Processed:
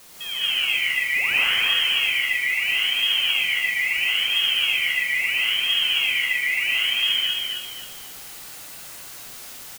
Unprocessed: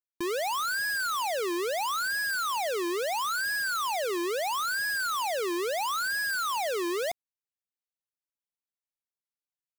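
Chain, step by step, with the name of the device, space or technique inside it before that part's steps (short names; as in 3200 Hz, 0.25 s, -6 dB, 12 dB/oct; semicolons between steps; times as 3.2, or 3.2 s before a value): LPF 1700 Hz 12 dB/oct; 1.15–1.57 band shelf 2800 Hz +10 dB 2.8 oct; scrambled radio voice (BPF 360–2600 Hz; inverted band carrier 3600 Hz; white noise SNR 15 dB); feedback echo 0.265 s, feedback 34%, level -4.5 dB; non-linear reverb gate 0.24 s rising, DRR -7 dB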